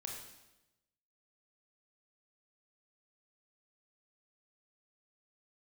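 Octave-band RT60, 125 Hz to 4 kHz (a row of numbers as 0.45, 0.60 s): 1.2, 1.1, 1.0, 0.95, 0.90, 0.90 s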